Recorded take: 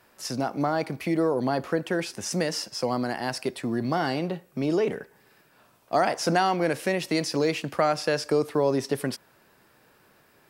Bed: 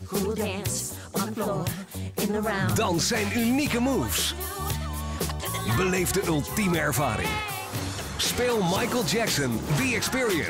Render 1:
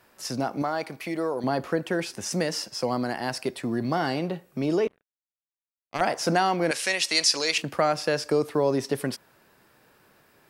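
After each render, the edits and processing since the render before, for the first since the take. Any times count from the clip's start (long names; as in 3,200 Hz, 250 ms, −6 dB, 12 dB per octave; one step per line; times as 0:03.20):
0:00.62–0:01.44: low-shelf EQ 350 Hz −10.5 dB
0:04.87–0:06.01: power curve on the samples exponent 3
0:06.71–0:07.58: meter weighting curve ITU-R 468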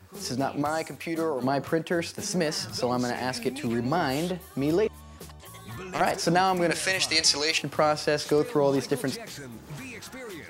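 mix in bed −15 dB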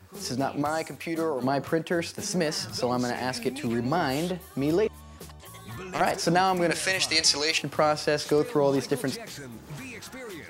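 no processing that can be heard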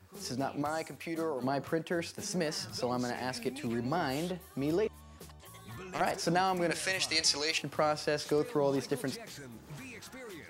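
level −6.5 dB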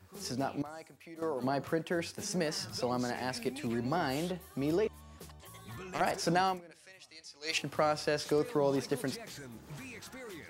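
0:00.62–0:01.22: clip gain −11.5 dB
0:06.48–0:07.54: duck −23 dB, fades 0.13 s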